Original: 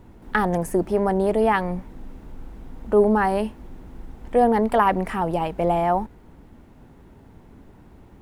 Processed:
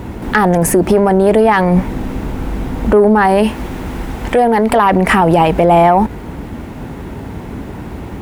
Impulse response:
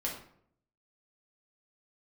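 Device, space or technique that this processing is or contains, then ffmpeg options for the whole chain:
mastering chain: -filter_complex "[0:a]highpass=45,equalizer=frequency=2300:width_type=o:width=0.77:gain=2.5,acompressor=threshold=-24dB:ratio=2.5,asoftclip=type=tanh:threshold=-14.5dB,alimiter=level_in=24dB:limit=-1dB:release=50:level=0:latency=1,asettb=1/sr,asplit=3[link_01][link_02][link_03];[link_01]atrim=end=3.434[link_04];[link_02]atrim=start=3.43:end=4.7,asetpts=PTS-STARTPTS,afade=type=in:duration=0.004:curve=qsin,afade=type=out:start_time=1.266:duration=0.004:curve=qsin,tiltshelf=frequency=720:gain=-3[link_05];[link_03]atrim=start=4.696[link_06];[link_04][link_05]acrossfade=duration=0.004:curve1=hsin:curve2=qsin[link_07];[link_07][link_06]acrossfade=duration=0.004:curve1=qsin:curve2=hsin,volume=-1.5dB"

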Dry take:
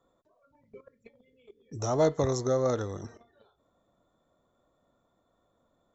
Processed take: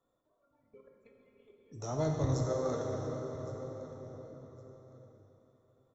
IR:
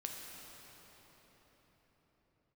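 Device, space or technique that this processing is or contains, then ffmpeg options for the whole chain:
cathedral: -filter_complex "[1:a]atrim=start_sample=2205[link_01];[0:a][link_01]afir=irnorm=-1:irlink=0,asplit=3[link_02][link_03][link_04];[link_02]afade=type=out:start_time=1.91:duration=0.02[link_05];[link_03]asubboost=boost=4.5:cutoff=190,afade=type=in:start_time=1.91:duration=0.02,afade=type=out:start_time=2.46:duration=0.02[link_06];[link_04]afade=type=in:start_time=2.46:duration=0.02[link_07];[link_05][link_06][link_07]amix=inputs=3:normalize=0,aecho=1:1:1112|2224:0.126|0.029,volume=-5.5dB"

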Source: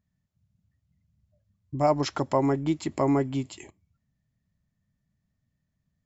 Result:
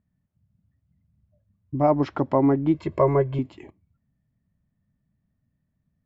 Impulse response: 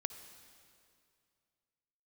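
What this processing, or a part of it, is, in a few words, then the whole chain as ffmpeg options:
phone in a pocket: -filter_complex "[0:a]highshelf=frequency=6100:gain=-3,asettb=1/sr,asplit=3[link_01][link_02][link_03];[link_01]atrim=end=2.744[link_04];[link_02]atrim=start=2.74:end=3.39,asetpts=PTS-STARTPTS,afade=type=in:duration=0.004:curve=qsin,afade=type=out:start_time=0.646:duration=0.004:curve=qsin,aecho=1:1:1.9:0.94,atrim=end_sample=28665[link_05];[link_03]atrim=start=3.386[link_06];[link_04][link_05]acrossfade=duration=0.004:curve1=hsin:curve2=qsin[link_07];[link_07][link_06]acrossfade=duration=0.004:curve1=qsin:curve2=hsin,lowpass=3300,equalizer=frequency=270:width_type=o:width=0.77:gain=3.5,highshelf=frequency=2300:gain=-10,volume=3dB"

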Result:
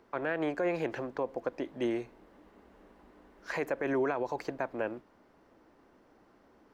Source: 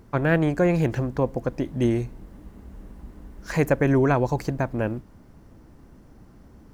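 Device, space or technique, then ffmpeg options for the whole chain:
DJ mixer with the lows and highs turned down: -filter_complex "[0:a]acrossover=split=310 4600:gain=0.0794 1 0.224[link_01][link_02][link_03];[link_01][link_02][link_03]amix=inputs=3:normalize=0,alimiter=limit=-18.5dB:level=0:latency=1:release=61,volume=-3.5dB"

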